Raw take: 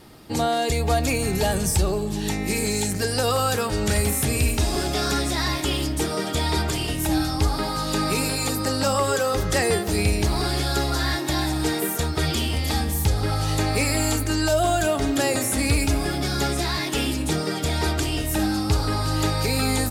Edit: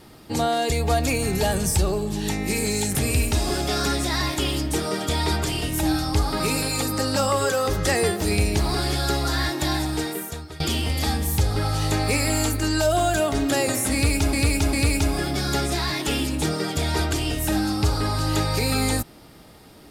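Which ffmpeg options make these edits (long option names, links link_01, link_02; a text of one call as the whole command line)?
ffmpeg -i in.wav -filter_complex "[0:a]asplit=6[link_01][link_02][link_03][link_04][link_05][link_06];[link_01]atrim=end=2.952[link_07];[link_02]atrim=start=4.208:end=7.662[link_08];[link_03]atrim=start=8.068:end=12.27,asetpts=PTS-STARTPTS,afade=type=out:start_time=3.352:duration=0.85:silence=0.1[link_09];[link_04]atrim=start=12.27:end=16.002,asetpts=PTS-STARTPTS,afade=type=in:duration=0.004:curve=hsin:silence=0.1[link_10];[link_05]atrim=start=15.598:end=16.002[link_11];[link_06]atrim=start=15.598[link_12];[link_07][link_08]acrossfade=duration=0.004:curve1=hsin:curve2=hsin[link_13];[link_09][link_10]concat=n=2:v=0:a=1[link_14];[link_13][link_14]acrossfade=duration=0.004:curve1=hsin:curve2=hsin[link_15];[link_15][link_11]acrossfade=duration=0.004:curve1=hsin:curve2=hsin[link_16];[link_16][link_12]acrossfade=duration=0.004:curve1=hsin:curve2=hsin" out.wav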